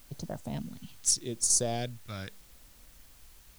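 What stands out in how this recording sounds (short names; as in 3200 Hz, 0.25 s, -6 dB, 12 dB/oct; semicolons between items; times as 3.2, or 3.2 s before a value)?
phasing stages 2, 0.82 Hz, lowest notch 500–2300 Hz; a quantiser's noise floor 10-bit, dither triangular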